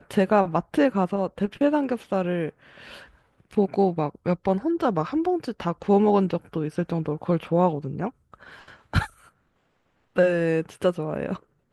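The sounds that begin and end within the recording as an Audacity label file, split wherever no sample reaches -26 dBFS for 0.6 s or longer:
3.570000	8.080000	sound
8.940000	9.040000	sound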